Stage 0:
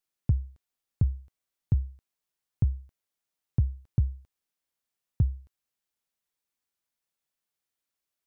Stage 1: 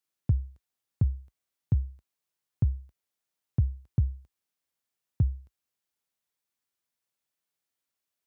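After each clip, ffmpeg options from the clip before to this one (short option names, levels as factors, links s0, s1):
-af "highpass=f=52:w=0.5412,highpass=f=52:w=1.3066"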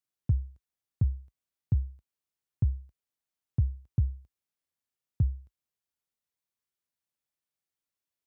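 -af "lowshelf=f=200:g=6,volume=0.501"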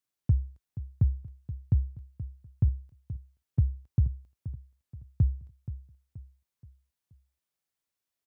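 -af "aecho=1:1:477|954|1431|1908:0.211|0.0888|0.0373|0.0157,volume=1.26"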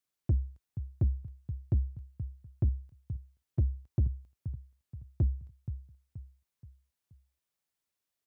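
-af "asoftclip=type=tanh:threshold=0.0944"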